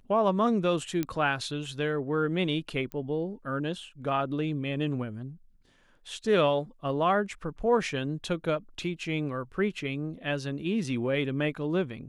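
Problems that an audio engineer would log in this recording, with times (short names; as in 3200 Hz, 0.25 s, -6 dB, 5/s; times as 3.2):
1.03 pop -16 dBFS
2.92 pop -24 dBFS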